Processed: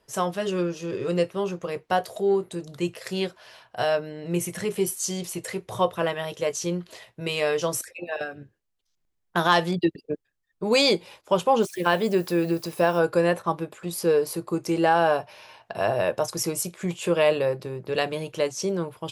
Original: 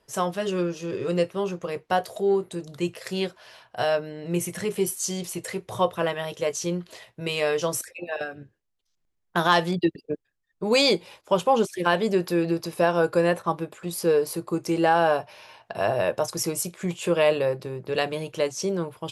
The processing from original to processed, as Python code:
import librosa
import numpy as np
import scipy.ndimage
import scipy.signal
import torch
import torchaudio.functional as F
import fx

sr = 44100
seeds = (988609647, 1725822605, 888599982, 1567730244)

y = fx.dmg_noise_colour(x, sr, seeds[0], colour='violet', level_db=-51.0, at=(11.61, 12.98), fade=0.02)